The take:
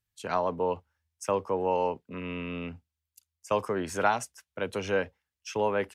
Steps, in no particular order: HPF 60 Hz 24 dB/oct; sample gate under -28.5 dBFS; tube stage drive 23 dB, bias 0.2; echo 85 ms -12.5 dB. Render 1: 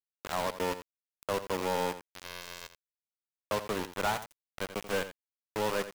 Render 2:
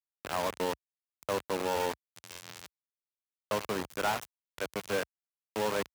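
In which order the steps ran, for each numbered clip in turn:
tube stage > HPF > sample gate > echo; echo > tube stage > sample gate > HPF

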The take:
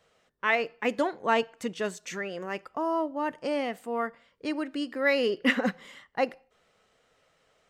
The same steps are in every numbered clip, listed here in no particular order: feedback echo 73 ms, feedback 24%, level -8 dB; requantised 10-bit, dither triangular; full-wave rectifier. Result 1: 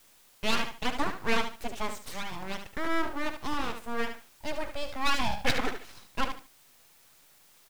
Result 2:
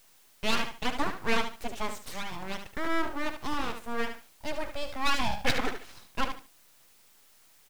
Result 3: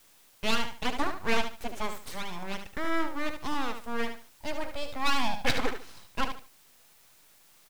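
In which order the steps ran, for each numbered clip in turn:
feedback echo > full-wave rectifier > requantised; feedback echo > requantised > full-wave rectifier; full-wave rectifier > feedback echo > requantised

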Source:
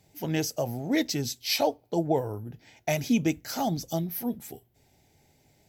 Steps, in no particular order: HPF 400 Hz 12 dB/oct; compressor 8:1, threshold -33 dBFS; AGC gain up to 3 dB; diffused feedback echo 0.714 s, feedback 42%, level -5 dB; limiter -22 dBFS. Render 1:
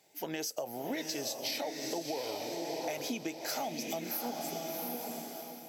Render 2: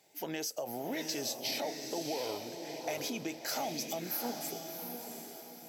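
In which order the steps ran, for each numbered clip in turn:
HPF > limiter > diffused feedback echo > AGC > compressor; AGC > limiter > HPF > compressor > diffused feedback echo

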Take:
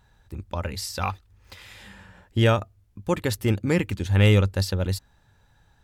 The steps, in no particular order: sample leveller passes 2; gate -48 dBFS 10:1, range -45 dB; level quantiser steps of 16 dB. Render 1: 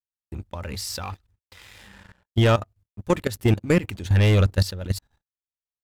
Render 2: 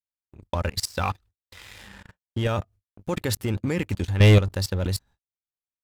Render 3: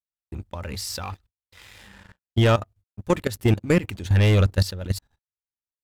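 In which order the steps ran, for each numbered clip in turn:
sample leveller > gate > level quantiser; level quantiser > sample leveller > gate; sample leveller > level quantiser > gate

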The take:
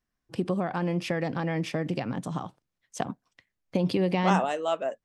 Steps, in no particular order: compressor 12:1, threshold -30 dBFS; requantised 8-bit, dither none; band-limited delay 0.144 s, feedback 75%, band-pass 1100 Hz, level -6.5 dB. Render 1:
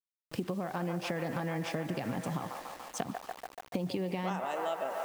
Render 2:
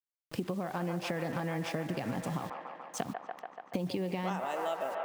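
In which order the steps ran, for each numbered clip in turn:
band-limited delay > requantised > compressor; requantised > band-limited delay > compressor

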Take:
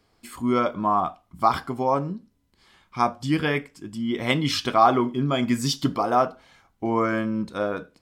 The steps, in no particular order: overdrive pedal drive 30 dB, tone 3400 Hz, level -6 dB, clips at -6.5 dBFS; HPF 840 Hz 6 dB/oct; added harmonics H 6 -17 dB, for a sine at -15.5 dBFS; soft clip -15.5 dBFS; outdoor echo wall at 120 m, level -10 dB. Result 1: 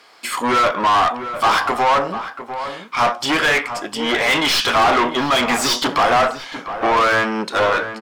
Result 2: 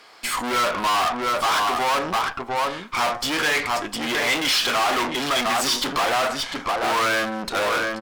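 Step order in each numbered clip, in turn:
soft clip > added harmonics > HPF > overdrive pedal > outdoor echo; outdoor echo > overdrive pedal > soft clip > HPF > added harmonics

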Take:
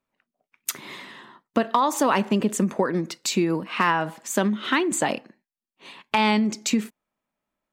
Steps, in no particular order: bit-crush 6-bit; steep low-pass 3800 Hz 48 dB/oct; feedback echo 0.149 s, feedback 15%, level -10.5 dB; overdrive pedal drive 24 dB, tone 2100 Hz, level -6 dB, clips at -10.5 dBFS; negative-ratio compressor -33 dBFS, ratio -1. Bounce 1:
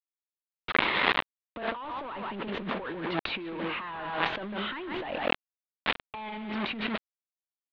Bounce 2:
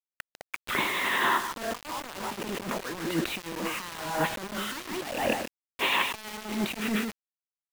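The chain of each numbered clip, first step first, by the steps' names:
feedback echo > bit-crush > overdrive pedal > negative-ratio compressor > steep low-pass; overdrive pedal > feedback echo > negative-ratio compressor > steep low-pass > bit-crush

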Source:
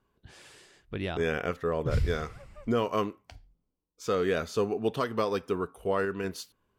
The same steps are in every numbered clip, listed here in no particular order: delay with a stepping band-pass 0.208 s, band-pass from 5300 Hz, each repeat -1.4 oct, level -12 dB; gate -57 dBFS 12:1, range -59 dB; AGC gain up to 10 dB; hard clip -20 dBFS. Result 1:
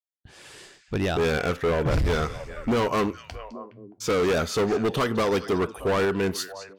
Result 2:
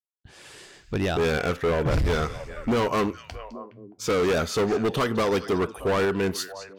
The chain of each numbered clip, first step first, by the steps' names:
gate > delay with a stepping band-pass > AGC > hard clip; AGC > gate > delay with a stepping band-pass > hard clip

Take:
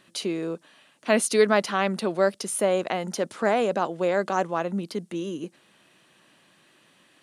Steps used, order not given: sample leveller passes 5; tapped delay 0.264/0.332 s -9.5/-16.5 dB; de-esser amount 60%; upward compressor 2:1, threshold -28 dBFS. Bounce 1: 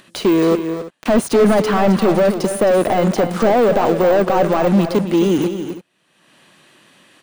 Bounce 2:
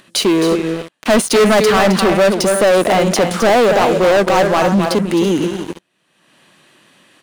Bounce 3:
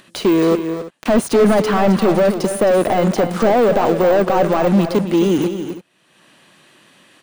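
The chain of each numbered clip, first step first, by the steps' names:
sample leveller > de-esser > tapped delay > upward compressor; de-esser > tapped delay > sample leveller > upward compressor; sample leveller > de-esser > upward compressor > tapped delay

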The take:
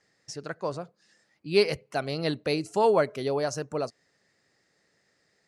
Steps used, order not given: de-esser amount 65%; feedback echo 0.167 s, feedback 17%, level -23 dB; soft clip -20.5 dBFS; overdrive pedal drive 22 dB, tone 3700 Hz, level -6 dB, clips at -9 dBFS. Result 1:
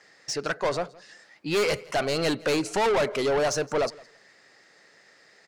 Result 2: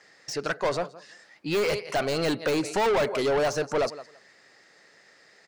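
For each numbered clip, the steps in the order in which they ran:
de-esser > overdrive pedal > soft clip > feedback echo; feedback echo > overdrive pedal > soft clip > de-esser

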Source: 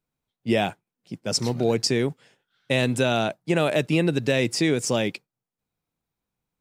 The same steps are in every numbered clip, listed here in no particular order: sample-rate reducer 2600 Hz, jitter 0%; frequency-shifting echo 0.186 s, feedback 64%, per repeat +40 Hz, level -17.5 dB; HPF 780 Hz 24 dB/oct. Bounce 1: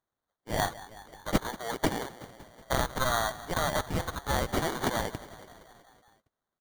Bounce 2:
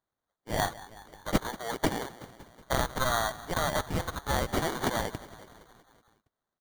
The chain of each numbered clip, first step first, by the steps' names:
frequency-shifting echo > HPF > sample-rate reducer; HPF > frequency-shifting echo > sample-rate reducer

